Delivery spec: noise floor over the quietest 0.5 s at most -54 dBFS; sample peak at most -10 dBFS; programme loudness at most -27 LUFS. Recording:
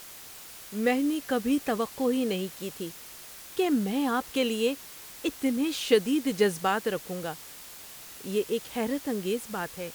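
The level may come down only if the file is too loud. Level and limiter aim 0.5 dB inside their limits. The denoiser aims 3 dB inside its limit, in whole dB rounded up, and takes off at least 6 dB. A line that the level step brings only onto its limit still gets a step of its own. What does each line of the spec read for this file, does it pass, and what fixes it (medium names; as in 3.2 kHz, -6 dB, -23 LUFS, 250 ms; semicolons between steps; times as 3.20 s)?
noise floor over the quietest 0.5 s -46 dBFS: fail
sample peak -9.0 dBFS: fail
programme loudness -29.0 LUFS: pass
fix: noise reduction 11 dB, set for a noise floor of -46 dBFS; peak limiter -10.5 dBFS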